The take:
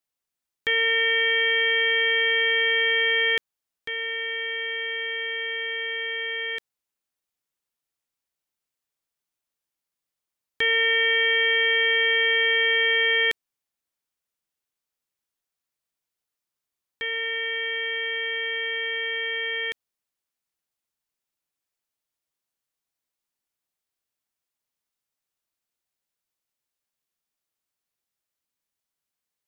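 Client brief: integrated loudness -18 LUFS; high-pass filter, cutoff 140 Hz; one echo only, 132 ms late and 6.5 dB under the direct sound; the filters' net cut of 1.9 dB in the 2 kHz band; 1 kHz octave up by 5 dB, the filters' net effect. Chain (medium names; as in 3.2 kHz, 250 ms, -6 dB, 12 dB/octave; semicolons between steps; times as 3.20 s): high-pass 140 Hz; peaking EQ 1 kHz +8 dB; peaking EQ 2 kHz -4 dB; delay 132 ms -6.5 dB; trim +5 dB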